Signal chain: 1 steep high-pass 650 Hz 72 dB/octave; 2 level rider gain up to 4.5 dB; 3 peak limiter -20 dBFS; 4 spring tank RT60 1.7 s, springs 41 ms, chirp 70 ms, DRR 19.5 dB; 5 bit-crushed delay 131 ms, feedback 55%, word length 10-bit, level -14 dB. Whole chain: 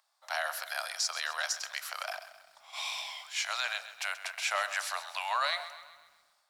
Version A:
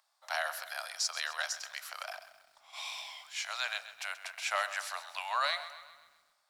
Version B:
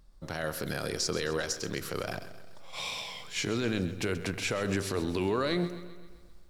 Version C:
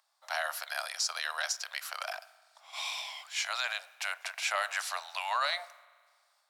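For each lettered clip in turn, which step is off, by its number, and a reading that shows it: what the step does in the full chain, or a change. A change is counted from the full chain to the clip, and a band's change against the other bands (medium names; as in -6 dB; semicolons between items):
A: 2, crest factor change +2.0 dB; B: 1, 500 Hz band +14.0 dB; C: 5, momentary loudness spread change -1 LU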